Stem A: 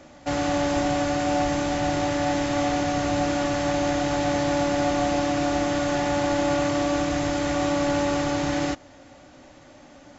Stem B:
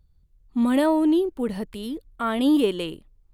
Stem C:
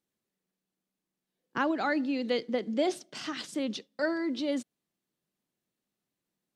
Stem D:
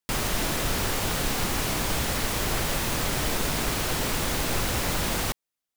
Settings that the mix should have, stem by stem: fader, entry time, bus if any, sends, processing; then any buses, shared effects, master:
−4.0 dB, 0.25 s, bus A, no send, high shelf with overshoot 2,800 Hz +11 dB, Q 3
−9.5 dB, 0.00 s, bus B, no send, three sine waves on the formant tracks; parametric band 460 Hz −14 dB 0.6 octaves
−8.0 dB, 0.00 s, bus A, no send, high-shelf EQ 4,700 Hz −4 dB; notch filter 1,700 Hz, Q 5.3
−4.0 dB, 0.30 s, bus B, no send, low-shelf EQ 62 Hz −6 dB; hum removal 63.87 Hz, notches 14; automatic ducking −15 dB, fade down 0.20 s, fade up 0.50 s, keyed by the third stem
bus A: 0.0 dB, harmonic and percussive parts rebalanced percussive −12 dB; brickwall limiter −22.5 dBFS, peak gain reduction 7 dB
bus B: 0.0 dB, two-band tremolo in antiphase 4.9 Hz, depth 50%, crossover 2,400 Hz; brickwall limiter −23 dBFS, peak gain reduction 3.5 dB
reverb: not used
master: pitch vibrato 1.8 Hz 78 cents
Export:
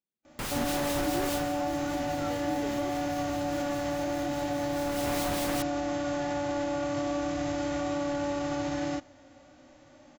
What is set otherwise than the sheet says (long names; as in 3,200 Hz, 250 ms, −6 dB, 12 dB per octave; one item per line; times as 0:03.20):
stem A: missing high shelf with overshoot 2,800 Hz +11 dB, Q 3
master: missing pitch vibrato 1.8 Hz 78 cents